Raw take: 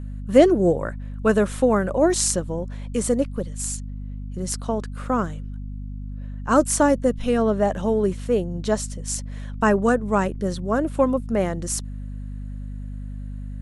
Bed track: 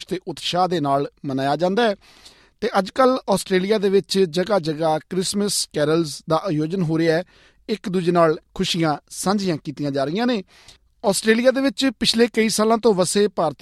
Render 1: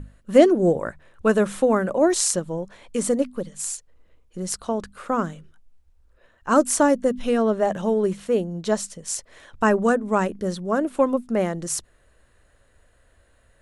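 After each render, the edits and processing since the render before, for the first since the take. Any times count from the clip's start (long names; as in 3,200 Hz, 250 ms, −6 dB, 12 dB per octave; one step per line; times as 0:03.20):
mains-hum notches 50/100/150/200/250 Hz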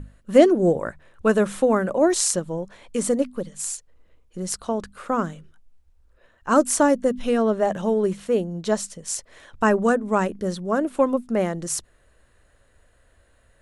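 no processing that can be heard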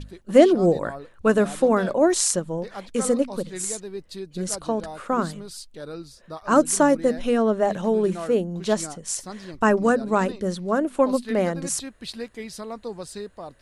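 mix in bed track −17.5 dB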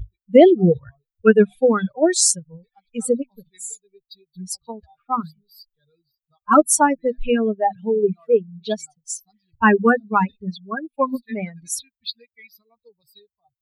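spectral dynamics exaggerated over time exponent 3
boost into a limiter +11 dB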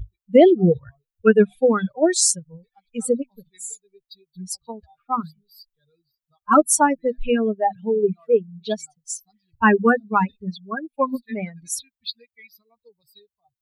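level −1 dB
brickwall limiter −3 dBFS, peak gain reduction 1 dB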